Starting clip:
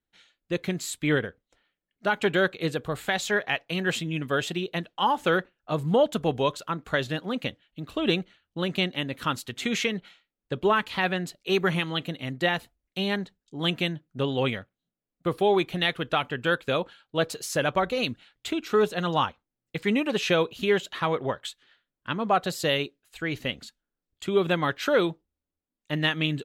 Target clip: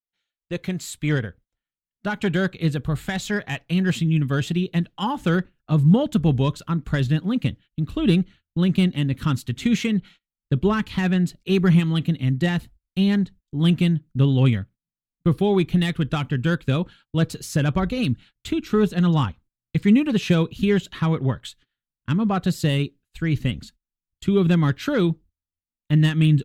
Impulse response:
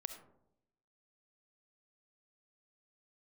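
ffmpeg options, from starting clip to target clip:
-filter_complex "[0:a]agate=range=-21dB:threshold=-51dB:ratio=16:detection=peak,asubboost=boost=9:cutoff=190,acrossover=split=870[link_01][link_02];[link_02]asoftclip=type=tanh:threshold=-22dB[link_03];[link_01][link_03]amix=inputs=2:normalize=0"

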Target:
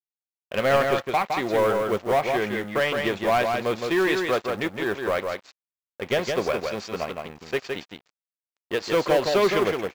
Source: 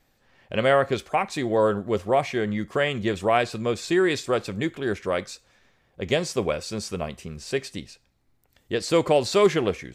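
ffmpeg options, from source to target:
ffmpeg -i in.wav -filter_complex "[0:a]aresample=16000,aeval=exprs='sgn(val(0))*max(abs(val(0))-0.0106,0)':channel_layout=same,aresample=44100,aemphasis=mode=reproduction:type=cd,asplit=2[link_01][link_02];[link_02]highpass=frequency=720:poles=1,volume=17dB,asoftclip=type=tanh:threshold=-8dB[link_03];[link_01][link_03]amix=inputs=2:normalize=0,lowpass=frequency=4500:poles=1,volume=-6dB,acrusher=bits=6:mode=log:mix=0:aa=0.000001,aecho=1:1:164:0.596,volume=-4.5dB" out.wav

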